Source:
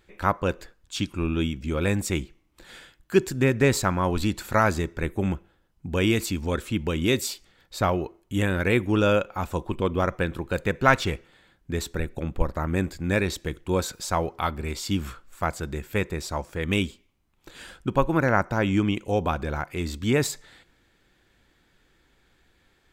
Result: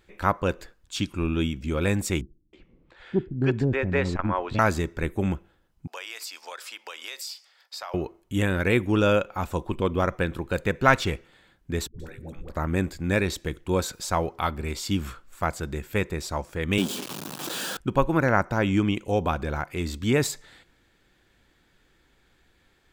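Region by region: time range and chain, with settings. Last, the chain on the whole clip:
2.21–4.59 LPF 2700 Hz + bands offset in time lows, highs 0.32 s, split 380 Hz + core saturation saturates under 230 Hz
5.87–7.94 HPF 670 Hz 24 dB/oct + bell 5000 Hz +12 dB 0.26 oct + compressor 4:1, threshold -34 dBFS
11.87–12.5 notches 50/100/150/200/250/300/350/400/450/500 Hz + compressor 3:1, threshold -37 dBFS + dispersion highs, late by 0.126 s, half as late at 420 Hz
16.78–17.77 zero-crossing step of -25.5 dBFS + HPF 150 Hz 24 dB/oct + bell 2100 Hz -10 dB 0.46 oct
whole clip: dry

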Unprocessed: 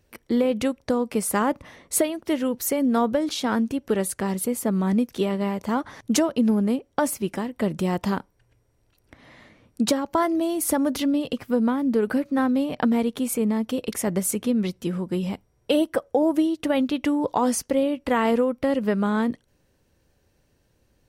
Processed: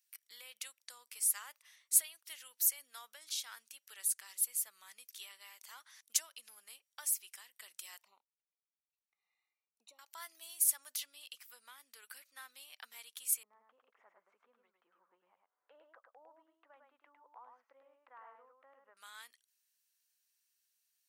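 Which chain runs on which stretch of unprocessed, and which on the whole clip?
8.03–9.99 running mean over 27 samples + envelope flanger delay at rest 2.7 ms, full sweep at -23 dBFS
13.43–18.97 LPF 1100 Hz 24 dB/oct + upward compressor, threshold -25 dBFS + echo 0.104 s -4.5 dB
whole clip: HPF 1400 Hz 12 dB/oct; differentiator; gain -4.5 dB

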